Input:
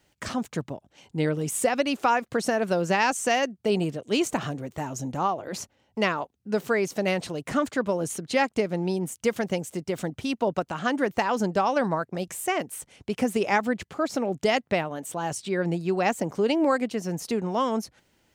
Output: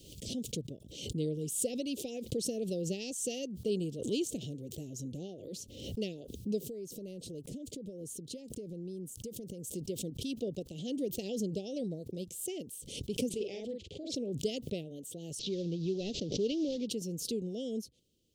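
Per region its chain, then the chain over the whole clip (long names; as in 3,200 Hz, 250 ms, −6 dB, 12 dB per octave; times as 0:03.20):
0:06.58–0:09.74: parametric band 3,100 Hz −7 dB 1.9 octaves + downward compressor 10 to 1, threshold −29 dBFS
0:13.29–0:14.16: low-pass filter 4,200 Hz + parametric band 190 Hz −11 dB 1.4 octaves + double-tracking delay 46 ms −3.5 dB
0:15.39–0:16.87: variable-slope delta modulation 32 kbit/s + dynamic equaliser 3,200 Hz, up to +4 dB, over −40 dBFS, Q 0.77
whole clip: elliptic band-stop filter 480–3,200 Hz, stop band 60 dB; background raised ahead of every attack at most 62 dB per second; level −8 dB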